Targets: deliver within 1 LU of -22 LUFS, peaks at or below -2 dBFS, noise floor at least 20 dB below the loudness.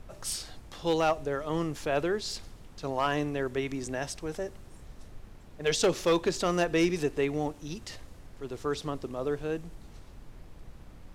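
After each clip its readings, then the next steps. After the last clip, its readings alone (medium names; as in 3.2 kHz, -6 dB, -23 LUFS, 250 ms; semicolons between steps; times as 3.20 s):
clipped samples 0.3%; clipping level -18.0 dBFS; noise floor -50 dBFS; noise floor target -51 dBFS; loudness -31.0 LUFS; peak level -18.0 dBFS; loudness target -22.0 LUFS
-> clip repair -18 dBFS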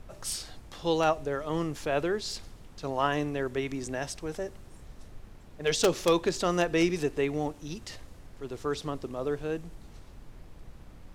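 clipped samples 0.0%; noise floor -50 dBFS; noise floor target -51 dBFS
-> noise print and reduce 6 dB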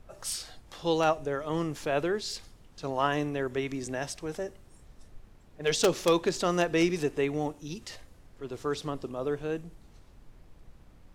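noise floor -56 dBFS; loudness -30.5 LUFS; peak level -9.0 dBFS; loudness target -22.0 LUFS
-> trim +8.5 dB; peak limiter -2 dBFS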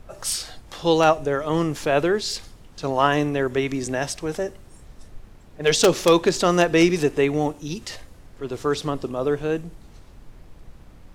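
loudness -22.0 LUFS; peak level -2.0 dBFS; noise floor -48 dBFS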